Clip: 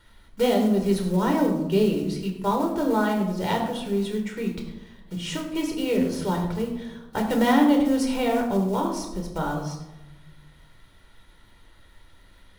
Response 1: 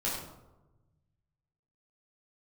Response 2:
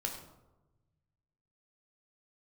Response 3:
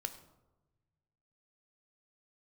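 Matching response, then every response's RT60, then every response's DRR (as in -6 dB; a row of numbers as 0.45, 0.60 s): 2; 1.1, 1.1, 1.1 s; -7.0, 1.5, 8.5 dB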